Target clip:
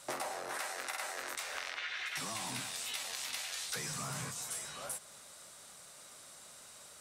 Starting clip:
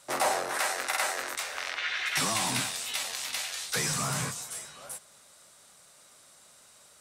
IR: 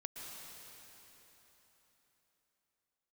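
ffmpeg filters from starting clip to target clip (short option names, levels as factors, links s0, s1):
-af "acompressor=threshold=0.0112:ratio=12,volume=1.33"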